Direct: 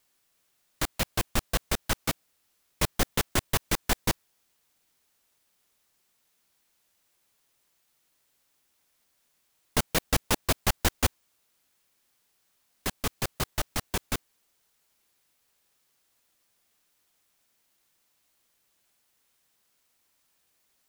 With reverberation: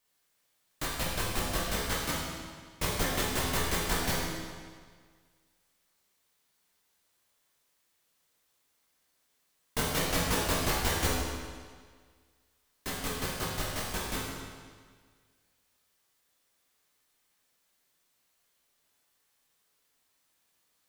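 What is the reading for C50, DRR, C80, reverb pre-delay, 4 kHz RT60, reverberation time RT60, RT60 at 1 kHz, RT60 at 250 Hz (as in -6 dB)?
-1.0 dB, -6.0 dB, 1.5 dB, 12 ms, 1.6 s, 1.7 s, 1.7 s, 1.6 s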